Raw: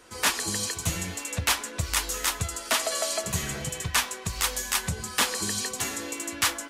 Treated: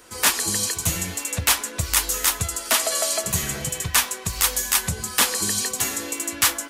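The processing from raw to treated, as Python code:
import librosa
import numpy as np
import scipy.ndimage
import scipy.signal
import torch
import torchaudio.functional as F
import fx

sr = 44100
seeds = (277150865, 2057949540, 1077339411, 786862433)

y = fx.high_shelf(x, sr, hz=10000.0, db=11.5)
y = y * 10.0 ** (3.0 / 20.0)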